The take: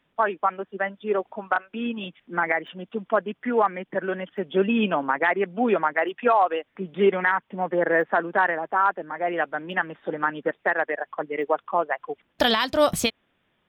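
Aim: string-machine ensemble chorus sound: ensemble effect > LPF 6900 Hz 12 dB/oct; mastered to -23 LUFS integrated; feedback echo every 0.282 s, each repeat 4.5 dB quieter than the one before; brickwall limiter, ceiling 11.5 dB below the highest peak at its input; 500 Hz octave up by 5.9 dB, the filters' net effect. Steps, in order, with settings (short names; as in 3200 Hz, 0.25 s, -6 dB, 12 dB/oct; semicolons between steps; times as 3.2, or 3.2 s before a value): bell 500 Hz +7.5 dB; limiter -15 dBFS; feedback echo 0.282 s, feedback 60%, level -4.5 dB; ensemble effect; LPF 6900 Hz 12 dB/oct; gain +4.5 dB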